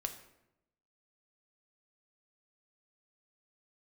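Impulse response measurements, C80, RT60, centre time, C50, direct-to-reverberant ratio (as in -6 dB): 12.5 dB, 0.85 s, 13 ms, 10.5 dB, 5.5 dB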